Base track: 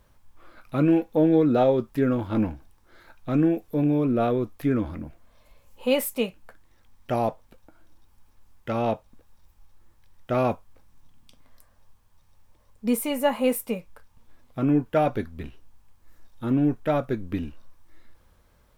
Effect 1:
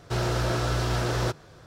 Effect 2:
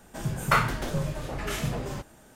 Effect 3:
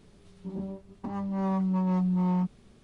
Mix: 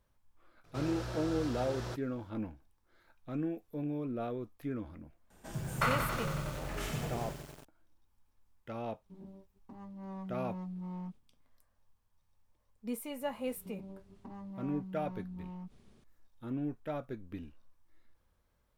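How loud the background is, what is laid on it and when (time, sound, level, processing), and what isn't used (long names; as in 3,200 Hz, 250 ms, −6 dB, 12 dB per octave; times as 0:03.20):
base track −14.5 dB
0:00.64: mix in 1 −14 dB
0:05.30: mix in 2 −9 dB + feedback echo at a low word length 92 ms, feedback 80%, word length 7 bits, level −5 dB
0:08.65: mix in 3 −15.5 dB + downward expander −44 dBFS
0:13.21: mix in 3 −6.5 dB + downward compressor, threshold −37 dBFS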